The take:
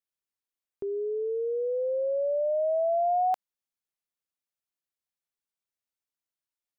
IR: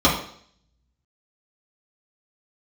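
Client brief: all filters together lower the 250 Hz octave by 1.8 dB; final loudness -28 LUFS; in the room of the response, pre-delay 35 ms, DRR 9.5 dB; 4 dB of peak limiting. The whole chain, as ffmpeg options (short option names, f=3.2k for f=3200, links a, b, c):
-filter_complex "[0:a]equalizer=f=250:t=o:g=-5,alimiter=level_in=1.5dB:limit=-24dB:level=0:latency=1,volume=-1.5dB,asplit=2[a][b];[1:a]atrim=start_sample=2205,adelay=35[c];[b][c]afir=irnorm=-1:irlink=0,volume=-30dB[d];[a][d]amix=inputs=2:normalize=0,volume=1.5dB"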